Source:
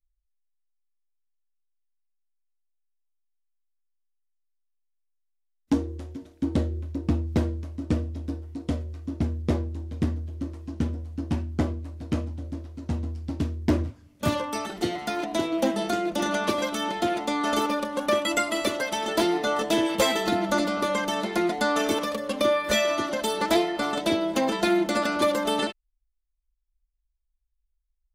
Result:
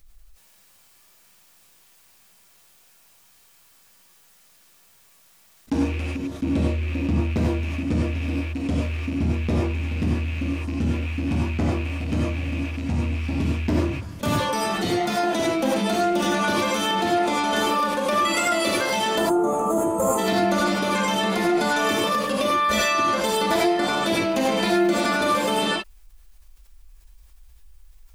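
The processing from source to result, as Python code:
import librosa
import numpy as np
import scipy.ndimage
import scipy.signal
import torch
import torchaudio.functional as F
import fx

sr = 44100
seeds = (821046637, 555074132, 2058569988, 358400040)

p1 = fx.rattle_buzz(x, sr, strikes_db=-35.0, level_db=-33.0)
p2 = fx.spec_box(p1, sr, start_s=19.18, length_s=1.0, low_hz=1400.0, high_hz=6300.0, gain_db=-30)
p3 = 10.0 ** (-20.5 / 20.0) * np.tanh(p2 / 10.0 ** (-20.5 / 20.0))
p4 = p2 + F.gain(torch.from_numpy(p3), -7.0).numpy()
p5 = fx.rev_gated(p4, sr, seeds[0], gate_ms=120, shape='rising', drr_db=-5.0)
p6 = fx.env_flatten(p5, sr, amount_pct=50)
y = F.gain(torch.from_numpy(p6), -8.0).numpy()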